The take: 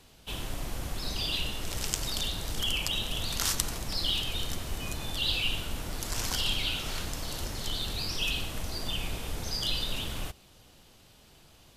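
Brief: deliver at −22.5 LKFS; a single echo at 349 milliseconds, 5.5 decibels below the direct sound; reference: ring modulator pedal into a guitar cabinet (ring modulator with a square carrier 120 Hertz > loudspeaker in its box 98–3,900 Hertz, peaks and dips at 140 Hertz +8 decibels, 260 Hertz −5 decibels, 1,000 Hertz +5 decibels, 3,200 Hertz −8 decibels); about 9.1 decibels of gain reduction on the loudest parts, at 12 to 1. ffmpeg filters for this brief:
ffmpeg -i in.wav -af "acompressor=threshold=-33dB:ratio=12,aecho=1:1:349:0.531,aeval=exprs='val(0)*sgn(sin(2*PI*120*n/s))':channel_layout=same,highpass=98,equalizer=frequency=140:width_type=q:width=4:gain=8,equalizer=frequency=260:width_type=q:width=4:gain=-5,equalizer=frequency=1000:width_type=q:width=4:gain=5,equalizer=frequency=3200:width_type=q:width=4:gain=-8,lowpass=frequency=3900:width=0.5412,lowpass=frequency=3900:width=1.3066,volume=14dB" out.wav

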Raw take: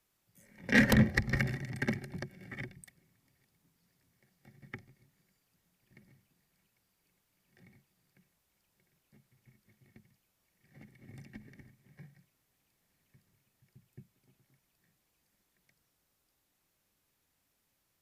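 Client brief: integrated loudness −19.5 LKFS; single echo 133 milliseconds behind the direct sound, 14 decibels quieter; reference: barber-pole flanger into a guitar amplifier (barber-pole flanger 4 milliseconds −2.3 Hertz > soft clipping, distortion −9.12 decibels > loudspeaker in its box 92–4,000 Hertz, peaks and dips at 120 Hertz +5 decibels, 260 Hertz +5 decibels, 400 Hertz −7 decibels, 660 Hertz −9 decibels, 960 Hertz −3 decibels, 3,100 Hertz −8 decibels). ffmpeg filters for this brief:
ffmpeg -i in.wav -filter_complex "[0:a]aecho=1:1:133:0.2,asplit=2[link_01][link_02];[link_02]adelay=4,afreqshift=-2.3[link_03];[link_01][link_03]amix=inputs=2:normalize=1,asoftclip=threshold=-26.5dB,highpass=92,equalizer=frequency=120:width_type=q:width=4:gain=5,equalizer=frequency=260:width_type=q:width=4:gain=5,equalizer=frequency=400:width_type=q:width=4:gain=-7,equalizer=frequency=660:width_type=q:width=4:gain=-9,equalizer=frequency=960:width_type=q:width=4:gain=-3,equalizer=frequency=3100:width_type=q:width=4:gain=-8,lowpass=frequency=4000:width=0.5412,lowpass=frequency=4000:width=1.3066,volume=18.5dB" out.wav

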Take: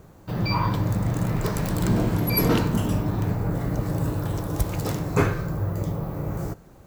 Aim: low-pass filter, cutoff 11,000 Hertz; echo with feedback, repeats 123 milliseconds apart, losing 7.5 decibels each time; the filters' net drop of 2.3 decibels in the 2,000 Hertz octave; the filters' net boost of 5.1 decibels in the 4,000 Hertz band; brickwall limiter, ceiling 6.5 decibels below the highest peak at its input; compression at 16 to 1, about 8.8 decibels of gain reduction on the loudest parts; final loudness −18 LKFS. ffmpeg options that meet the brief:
ffmpeg -i in.wav -af "lowpass=11000,equalizer=frequency=2000:width_type=o:gain=-5,equalizer=frequency=4000:width_type=o:gain=7.5,acompressor=threshold=-24dB:ratio=16,alimiter=limit=-22dB:level=0:latency=1,aecho=1:1:123|246|369|492|615:0.422|0.177|0.0744|0.0312|0.0131,volume=12.5dB" out.wav

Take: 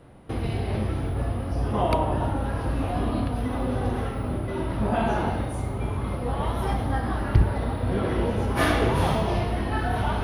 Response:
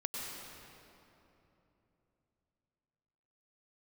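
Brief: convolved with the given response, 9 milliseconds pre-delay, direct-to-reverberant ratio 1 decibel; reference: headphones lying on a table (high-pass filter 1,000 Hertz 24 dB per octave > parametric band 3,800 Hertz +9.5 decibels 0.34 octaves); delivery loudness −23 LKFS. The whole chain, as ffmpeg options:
-filter_complex "[0:a]asplit=2[link_01][link_02];[1:a]atrim=start_sample=2205,adelay=9[link_03];[link_02][link_03]afir=irnorm=-1:irlink=0,volume=-3.5dB[link_04];[link_01][link_04]amix=inputs=2:normalize=0,highpass=frequency=1000:width=0.5412,highpass=frequency=1000:width=1.3066,equalizer=frequency=3800:width_type=o:width=0.34:gain=9.5,volume=9.5dB"

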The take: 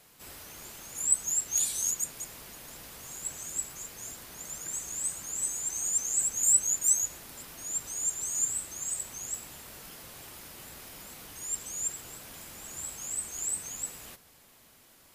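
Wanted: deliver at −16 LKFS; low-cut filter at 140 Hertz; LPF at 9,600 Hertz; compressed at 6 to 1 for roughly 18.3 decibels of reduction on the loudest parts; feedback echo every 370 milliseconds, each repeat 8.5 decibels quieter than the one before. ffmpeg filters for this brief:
ffmpeg -i in.wav -af "highpass=140,lowpass=9600,acompressor=threshold=-40dB:ratio=6,aecho=1:1:370|740|1110|1480:0.376|0.143|0.0543|0.0206,volume=25dB" out.wav

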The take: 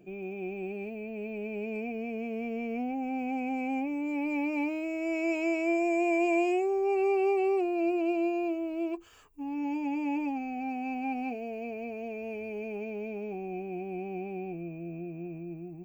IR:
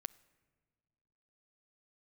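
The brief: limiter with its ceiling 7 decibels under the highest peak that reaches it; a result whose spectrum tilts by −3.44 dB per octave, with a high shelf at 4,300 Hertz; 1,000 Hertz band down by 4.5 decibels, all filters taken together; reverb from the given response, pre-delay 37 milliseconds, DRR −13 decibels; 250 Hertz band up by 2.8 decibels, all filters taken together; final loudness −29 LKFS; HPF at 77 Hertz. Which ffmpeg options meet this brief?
-filter_complex "[0:a]highpass=77,equalizer=frequency=250:width_type=o:gain=4.5,equalizer=frequency=1000:width_type=o:gain=-8.5,highshelf=frequency=4300:gain=8.5,alimiter=level_in=1dB:limit=-24dB:level=0:latency=1,volume=-1dB,asplit=2[link_01][link_02];[1:a]atrim=start_sample=2205,adelay=37[link_03];[link_02][link_03]afir=irnorm=-1:irlink=0,volume=16.5dB[link_04];[link_01][link_04]amix=inputs=2:normalize=0,volume=-9.5dB"

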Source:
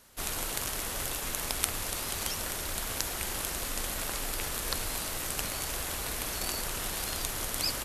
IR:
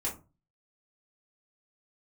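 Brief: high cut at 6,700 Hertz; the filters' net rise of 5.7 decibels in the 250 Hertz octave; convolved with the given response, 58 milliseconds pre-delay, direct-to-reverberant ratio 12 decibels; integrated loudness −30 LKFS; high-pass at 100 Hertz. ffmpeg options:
-filter_complex "[0:a]highpass=100,lowpass=6700,equalizer=frequency=250:width_type=o:gain=7.5,asplit=2[link_01][link_02];[1:a]atrim=start_sample=2205,adelay=58[link_03];[link_02][link_03]afir=irnorm=-1:irlink=0,volume=-15.5dB[link_04];[link_01][link_04]amix=inputs=2:normalize=0,volume=5dB"

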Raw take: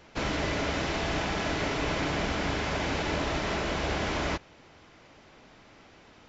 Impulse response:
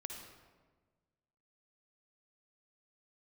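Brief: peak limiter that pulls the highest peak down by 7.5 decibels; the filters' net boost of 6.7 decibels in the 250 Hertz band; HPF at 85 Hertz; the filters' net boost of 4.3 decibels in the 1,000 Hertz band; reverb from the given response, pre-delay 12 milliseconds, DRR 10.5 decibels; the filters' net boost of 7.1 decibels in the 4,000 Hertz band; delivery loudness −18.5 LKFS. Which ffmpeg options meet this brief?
-filter_complex "[0:a]highpass=85,equalizer=frequency=250:width_type=o:gain=8.5,equalizer=frequency=1000:width_type=o:gain=4.5,equalizer=frequency=4000:width_type=o:gain=9,alimiter=limit=-19.5dB:level=0:latency=1,asplit=2[link_01][link_02];[1:a]atrim=start_sample=2205,adelay=12[link_03];[link_02][link_03]afir=irnorm=-1:irlink=0,volume=-8dB[link_04];[link_01][link_04]amix=inputs=2:normalize=0,volume=9.5dB"

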